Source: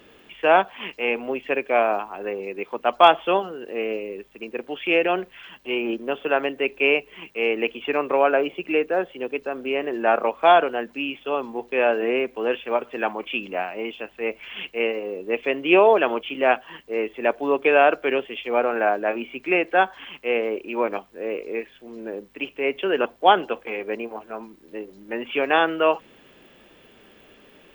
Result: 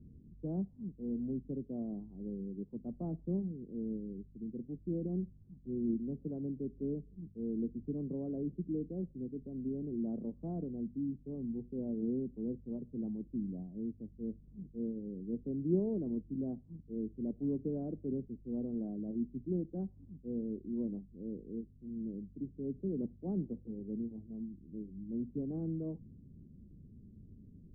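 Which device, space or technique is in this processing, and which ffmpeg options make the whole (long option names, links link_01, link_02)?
the neighbour's flat through the wall: -af "lowpass=frequency=190:width=0.5412,lowpass=frequency=190:width=1.3066,equalizer=frequency=93:width_type=o:width=0.45:gain=7,volume=8dB"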